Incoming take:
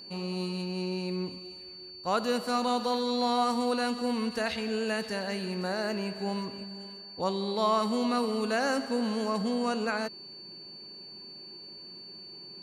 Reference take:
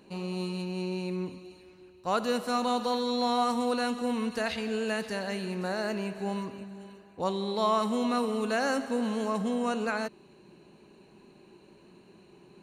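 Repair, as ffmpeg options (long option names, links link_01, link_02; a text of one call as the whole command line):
ffmpeg -i in.wav -af "bandreject=frequency=4500:width=30" out.wav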